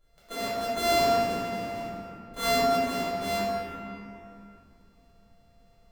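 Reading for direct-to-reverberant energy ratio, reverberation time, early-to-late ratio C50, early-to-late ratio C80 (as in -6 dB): -11.0 dB, 2.7 s, -4.5 dB, -2.0 dB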